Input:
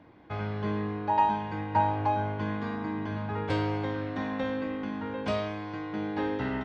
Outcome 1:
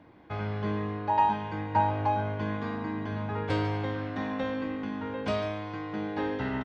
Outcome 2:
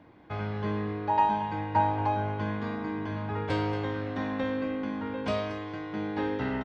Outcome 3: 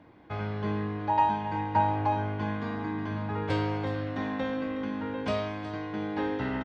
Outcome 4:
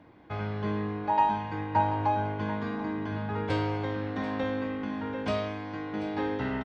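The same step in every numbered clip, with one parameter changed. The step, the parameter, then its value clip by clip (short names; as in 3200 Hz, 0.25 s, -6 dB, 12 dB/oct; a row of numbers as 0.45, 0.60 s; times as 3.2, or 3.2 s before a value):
feedback echo, time: 0.146, 0.229, 0.367, 0.737 s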